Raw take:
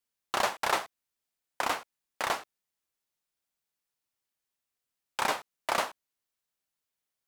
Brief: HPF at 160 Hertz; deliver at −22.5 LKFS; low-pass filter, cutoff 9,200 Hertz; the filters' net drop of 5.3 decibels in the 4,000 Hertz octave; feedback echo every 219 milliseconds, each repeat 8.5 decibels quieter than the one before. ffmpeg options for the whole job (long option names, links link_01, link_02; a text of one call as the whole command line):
ffmpeg -i in.wav -af "highpass=160,lowpass=9200,equalizer=frequency=4000:width_type=o:gain=-7,aecho=1:1:219|438|657|876:0.376|0.143|0.0543|0.0206,volume=11dB" out.wav